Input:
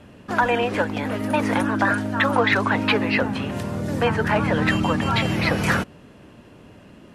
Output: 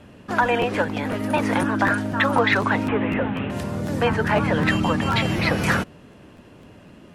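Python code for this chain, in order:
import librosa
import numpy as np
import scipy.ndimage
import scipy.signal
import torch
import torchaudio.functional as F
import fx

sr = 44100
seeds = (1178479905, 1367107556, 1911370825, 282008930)

y = fx.delta_mod(x, sr, bps=16000, step_db=-30.5, at=(2.88, 3.5))
y = fx.buffer_crackle(y, sr, first_s=0.61, period_s=0.25, block=512, kind='repeat')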